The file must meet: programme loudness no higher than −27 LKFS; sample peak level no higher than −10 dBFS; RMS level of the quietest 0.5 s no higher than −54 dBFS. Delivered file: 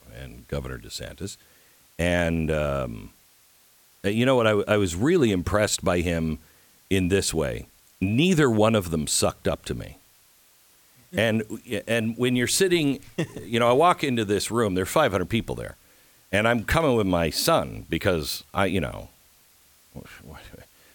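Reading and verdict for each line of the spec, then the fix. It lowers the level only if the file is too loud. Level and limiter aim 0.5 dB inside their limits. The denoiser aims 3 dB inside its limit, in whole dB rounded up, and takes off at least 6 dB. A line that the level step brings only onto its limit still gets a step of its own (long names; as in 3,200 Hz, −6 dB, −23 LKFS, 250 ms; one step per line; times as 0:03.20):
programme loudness −24.0 LKFS: out of spec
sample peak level −6.5 dBFS: out of spec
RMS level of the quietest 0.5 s −58 dBFS: in spec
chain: level −3.5 dB
brickwall limiter −10.5 dBFS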